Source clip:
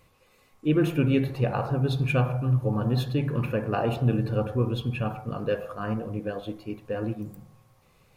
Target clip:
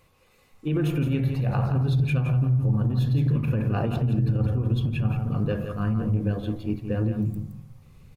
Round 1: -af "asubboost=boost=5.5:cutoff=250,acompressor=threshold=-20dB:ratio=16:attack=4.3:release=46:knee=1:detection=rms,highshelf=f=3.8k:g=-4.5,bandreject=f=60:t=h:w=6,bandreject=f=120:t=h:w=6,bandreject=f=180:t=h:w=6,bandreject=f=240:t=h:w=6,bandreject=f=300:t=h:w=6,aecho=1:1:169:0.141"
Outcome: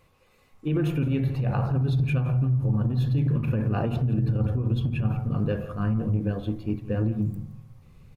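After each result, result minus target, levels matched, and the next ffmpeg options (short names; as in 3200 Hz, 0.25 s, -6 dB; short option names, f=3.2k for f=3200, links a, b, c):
echo-to-direct -8.5 dB; 8000 Hz band -3.0 dB
-af "asubboost=boost=5.5:cutoff=250,acompressor=threshold=-20dB:ratio=16:attack=4.3:release=46:knee=1:detection=rms,highshelf=f=3.8k:g=-4.5,bandreject=f=60:t=h:w=6,bandreject=f=120:t=h:w=6,bandreject=f=180:t=h:w=6,bandreject=f=240:t=h:w=6,bandreject=f=300:t=h:w=6,aecho=1:1:169:0.376"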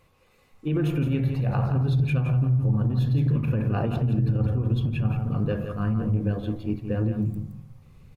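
8000 Hz band -3.5 dB
-af "asubboost=boost=5.5:cutoff=250,acompressor=threshold=-20dB:ratio=16:attack=4.3:release=46:knee=1:detection=rms,bandreject=f=60:t=h:w=6,bandreject=f=120:t=h:w=6,bandreject=f=180:t=h:w=6,bandreject=f=240:t=h:w=6,bandreject=f=300:t=h:w=6,aecho=1:1:169:0.376"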